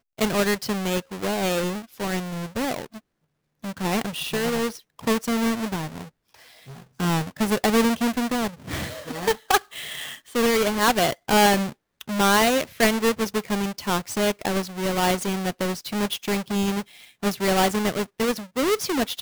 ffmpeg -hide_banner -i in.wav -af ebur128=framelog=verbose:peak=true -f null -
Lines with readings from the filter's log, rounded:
Integrated loudness:
  I:         -24.0 LUFS
  Threshold: -34.3 LUFS
Loudness range:
  LRA:         7.0 LU
  Threshold: -44.4 LUFS
  LRA low:   -28.2 LUFS
  LRA high:  -21.2 LUFS
True peak:
  Peak:       -5.0 dBFS